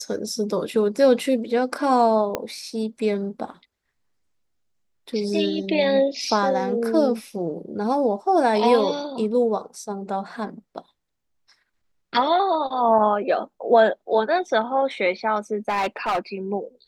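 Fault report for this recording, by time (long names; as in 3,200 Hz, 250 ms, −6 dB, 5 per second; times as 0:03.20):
0:02.35: click −10 dBFS
0:15.68–0:16.19: clipping −19 dBFS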